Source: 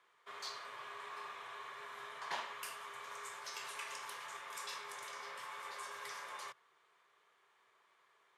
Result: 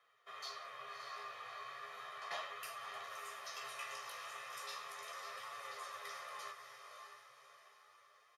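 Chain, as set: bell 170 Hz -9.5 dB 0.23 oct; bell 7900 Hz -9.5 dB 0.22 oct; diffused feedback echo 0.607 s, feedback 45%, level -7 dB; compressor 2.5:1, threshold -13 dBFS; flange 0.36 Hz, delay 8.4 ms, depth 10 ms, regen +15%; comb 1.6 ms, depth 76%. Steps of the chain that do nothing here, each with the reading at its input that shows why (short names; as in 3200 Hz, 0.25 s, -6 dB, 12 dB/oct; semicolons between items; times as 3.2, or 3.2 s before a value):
compressor, threshold -13 dBFS: input peak -27.0 dBFS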